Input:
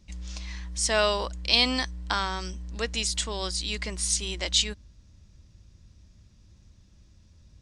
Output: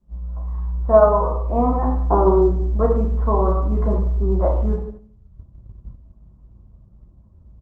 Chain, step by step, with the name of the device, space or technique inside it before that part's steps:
Chebyshev low-pass filter 1,200 Hz, order 5
reverb reduction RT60 1.2 s
0:01.85–0:02.51: drawn EQ curve 130 Hz 0 dB, 240 Hz +2 dB, 350 Hz +15 dB, 620 Hz +3 dB, 1,400 Hz −12 dB, 2,000 Hz −9 dB, 3,600 Hz −11 dB, 8,200 Hz −17 dB, 12,000 Hz +5 dB
repeating echo 88 ms, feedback 16%, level −20.5 dB
speakerphone in a meeting room (convolution reverb RT60 0.75 s, pre-delay 3 ms, DRR −3.5 dB; automatic gain control gain up to 12 dB; noise gate −35 dBFS, range −7 dB; Opus 20 kbit/s 48,000 Hz)

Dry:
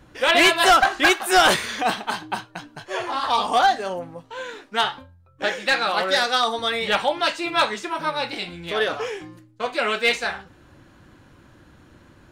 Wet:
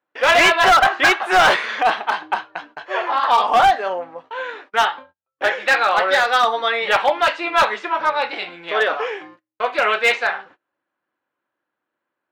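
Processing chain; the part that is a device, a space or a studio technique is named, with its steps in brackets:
walkie-talkie (band-pass filter 540–2,400 Hz; hard clipping −16.5 dBFS, distortion −11 dB; noise gate −50 dBFS, range −30 dB)
level +7.5 dB

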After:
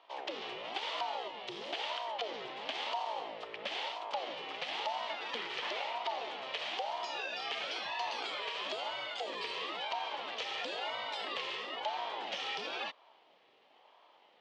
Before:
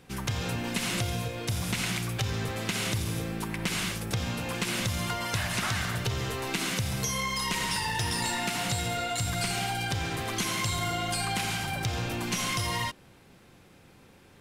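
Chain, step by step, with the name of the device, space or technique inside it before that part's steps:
voice changer toy (ring modulator whose carrier an LFO sweeps 540 Hz, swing 55%, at 1 Hz; loudspeaker in its box 500–4,300 Hz, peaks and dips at 860 Hz +4 dB, 1,500 Hz −6 dB, 3,100 Hz +6 dB)
level −4.5 dB

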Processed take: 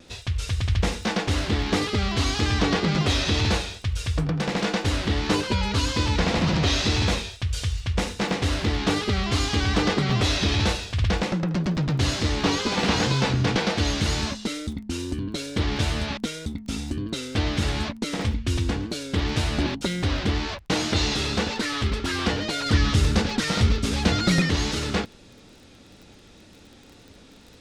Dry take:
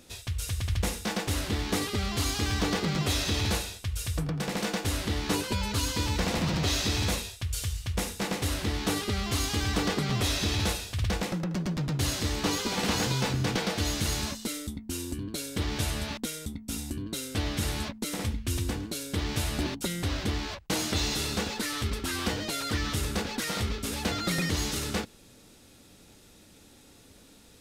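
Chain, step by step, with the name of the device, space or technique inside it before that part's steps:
lo-fi chain (low-pass filter 5,200 Hz 12 dB per octave; tape wow and flutter; surface crackle 20 per second −44 dBFS)
0:22.66–0:24.42: bass and treble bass +6 dB, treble +4 dB
level +6 dB

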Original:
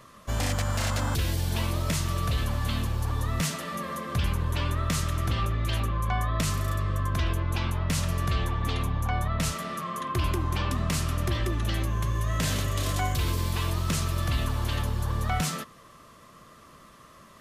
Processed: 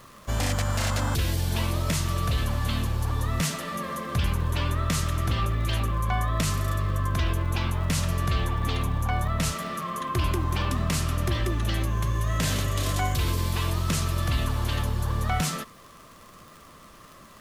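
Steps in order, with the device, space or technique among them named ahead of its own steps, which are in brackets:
vinyl LP (surface crackle 53 per second −39 dBFS; pink noise bed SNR 31 dB)
level +1.5 dB

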